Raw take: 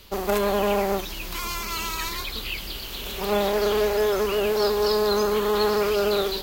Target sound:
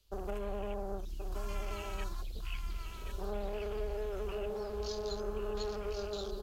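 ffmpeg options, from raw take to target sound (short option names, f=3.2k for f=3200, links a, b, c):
-filter_complex "[0:a]lowpass=11k,afwtdn=0.0282,equalizer=f=125:t=o:w=1:g=-7,equalizer=f=250:t=o:w=1:g=-11,equalizer=f=500:t=o:w=1:g=-5,equalizer=f=1k:t=o:w=1:g=-10,equalizer=f=2k:t=o:w=1:g=-11,equalizer=f=4k:t=o:w=1:g=-4,acrossover=split=150[a][b];[b]acompressor=threshold=-36dB:ratio=4[c];[a][c]amix=inputs=2:normalize=0,asplit=2[d][e];[e]aecho=0:1:1078:0.501[f];[d][f]amix=inputs=2:normalize=0,volume=-1.5dB"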